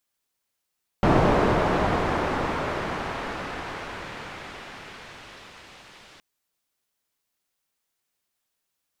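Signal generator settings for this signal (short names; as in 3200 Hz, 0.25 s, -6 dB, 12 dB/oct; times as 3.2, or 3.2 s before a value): swept filtered noise white, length 5.17 s lowpass, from 690 Hz, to 3600 Hz, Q 0.73, exponential, gain ramp -40 dB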